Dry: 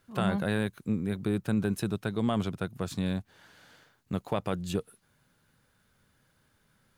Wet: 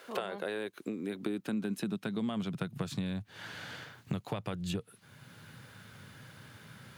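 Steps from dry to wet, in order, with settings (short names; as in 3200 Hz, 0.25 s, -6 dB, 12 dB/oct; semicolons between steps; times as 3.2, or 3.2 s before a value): bell 3000 Hz +6 dB 1.9 oct; compressor 6:1, threshold -40 dBFS, peak gain reduction 17.5 dB; high-pass sweep 490 Hz -> 110 Hz, 0.03–3.25; three-band squash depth 40%; gain +5 dB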